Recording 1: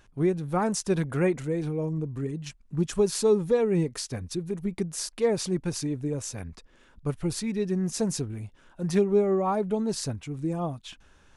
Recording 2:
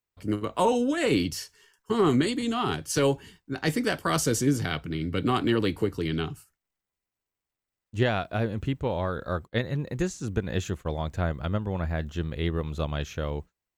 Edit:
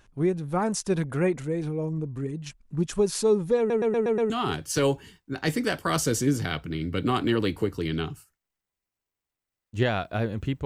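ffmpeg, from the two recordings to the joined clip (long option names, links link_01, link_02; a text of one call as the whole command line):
ffmpeg -i cue0.wav -i cue1.wav -filter_complex "[0:a]apad=whole_dur=10.65,atrim=end=10.65,asplit=6[link_01][link_02][link_03][link_04][link_05][link_06];[link_01]atrim=end=3.702[link_07];[link_02]atrim=start=3.578:end=3.702[link_08];[link_03]atrim=start=3.578:end=3.702[link_09];[link_04]atrim=start=3.578:end=3.702[link_10];[link_05]atrim=start=3.578:end=3.702[link_11];[link_06]atrim=start=3.578:end=3.702[link_12];[1:a]atrim=start=2.498:end=8.85[link_13];[link_07][link_08]acrossfade=duration=0.004:curve1=hsin:curve2=hsin[link_14];[link_14][link_09]acrossfade=duration=0.004:curve1=hsin:curve2=hsin[link_15];[link_15][link_10]acrossfade=duration=0.004:curve1=hsin:curve2=hsin[link_16];[link_16][link_11]acrossfade=duration=0.004:curve1=hsin:curve2=hsin[link_17];[link_17][link_12]acrossfade=duration=0.004:curve1=hsin:curve2=hsin[link_18];[link_18][link_13]acrossfade=duration=0.004:curve1=hsin:curve2=hsin" out.wav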